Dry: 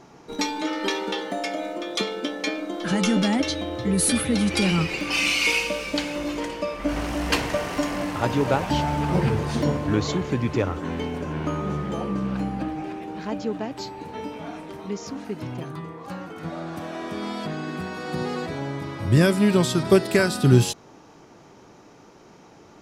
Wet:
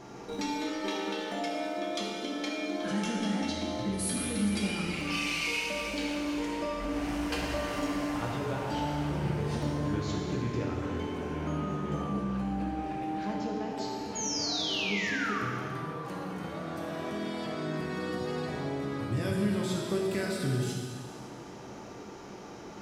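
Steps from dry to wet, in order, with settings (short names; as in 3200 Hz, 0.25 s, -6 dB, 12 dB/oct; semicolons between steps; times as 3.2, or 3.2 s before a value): compressor 2.5:1, threshold -41 dBFS, peak gain reduction 20 dB; painted sound fall, 14.15–15.4, 1100–6900 Hz -37 dBFS; plate-style reverb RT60 2.2 s, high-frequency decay 0.9×, DRR -2.5 dB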